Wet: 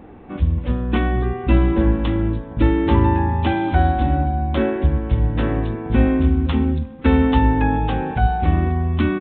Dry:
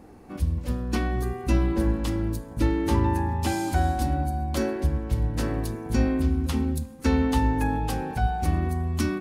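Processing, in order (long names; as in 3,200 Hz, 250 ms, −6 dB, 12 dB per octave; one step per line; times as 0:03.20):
downsampling to 8,000 Hz
level +7 dB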